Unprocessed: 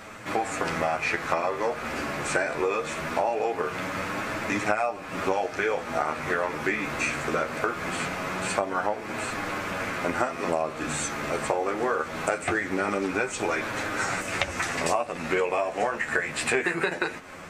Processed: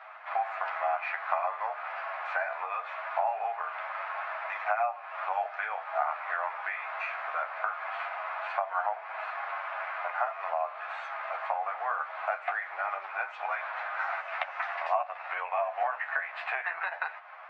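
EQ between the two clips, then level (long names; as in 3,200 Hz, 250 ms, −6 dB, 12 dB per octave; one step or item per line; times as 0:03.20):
Chebyshev high-pass filter 680 Hz, order 5
high-frequency loss of the air 350 metres
head-to-tape spacing loss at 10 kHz 24 dB
+3.0 dB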